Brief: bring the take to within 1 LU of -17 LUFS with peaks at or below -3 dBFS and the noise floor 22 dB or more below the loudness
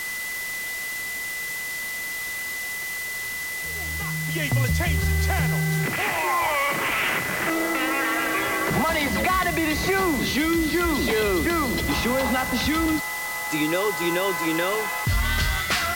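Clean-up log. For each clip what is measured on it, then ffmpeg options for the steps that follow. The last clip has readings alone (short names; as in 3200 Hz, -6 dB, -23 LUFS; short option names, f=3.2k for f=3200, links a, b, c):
steady tone 2000 Hz; tone level -29 dBFS; noise floor -31 dBFS; noise floor target -46 dBFS; loudness -23.5 LUFS; peak -11.5 dBFS; loudness target -17.0 LUFS
-> -af "bandreject=f=2k:w=30"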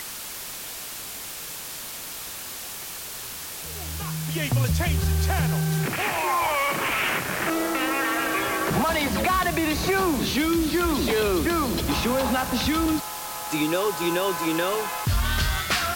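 steady tone none; noise floor -36 dBFS; noise floor target -47 dBFS
-> -af "afftdn=nr=11:nf=-36"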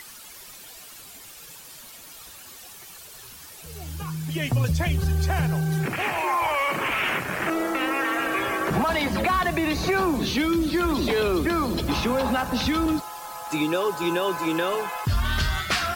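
noise floor -44 dBFS; noise floor target -47 dBFS
-> -af "afftdn=nr=6:nf=-44"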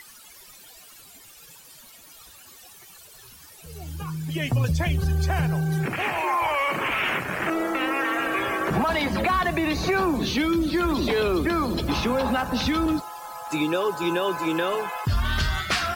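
noise floor -48 dBFS; loudness -24.5 LUFS; peak -14.0 dBFS; loudness target -17.0 LUFS
-> -af "volume=7.5dB"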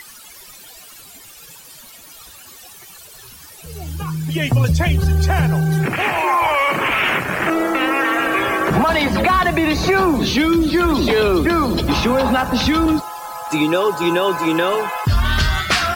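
loudness -17.0 LUFS; peak -6.5 dBFS; noise floor -41 dBFS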